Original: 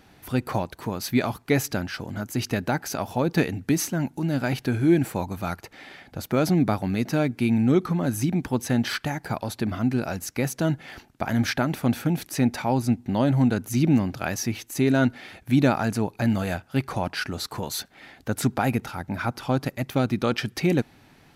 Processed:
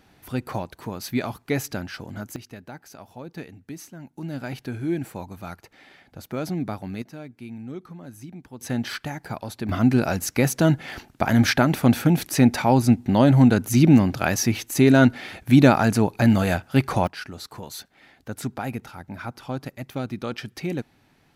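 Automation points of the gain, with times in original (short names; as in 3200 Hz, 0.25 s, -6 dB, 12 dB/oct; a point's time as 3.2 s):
-3 dB
from 2.36 s -15 dB
from 4.18 s -7 dB
from 7.02 s -16 dB
from 8.61 s -3.5 dB
from 9.69 s +5.5 dB
from 17.07 s -6.5 dB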